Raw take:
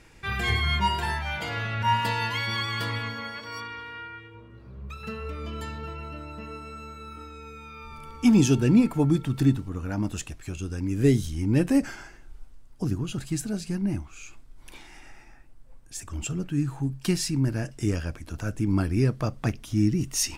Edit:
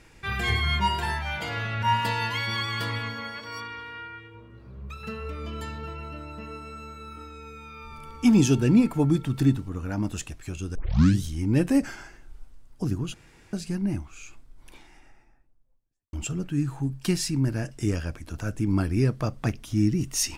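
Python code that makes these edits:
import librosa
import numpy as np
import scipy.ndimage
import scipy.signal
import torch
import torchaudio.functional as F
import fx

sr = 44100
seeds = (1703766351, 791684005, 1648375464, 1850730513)

y = fx.studio_fade_out(x, sr, start_s=14.08, length_s=2.05)
y = fx.edit(y, sr, fx.tape_start(start_s=10.75, length_s=0.47),
    fx.room_tone_fill(start_s=13.14, length_s=0.39), tone=tone)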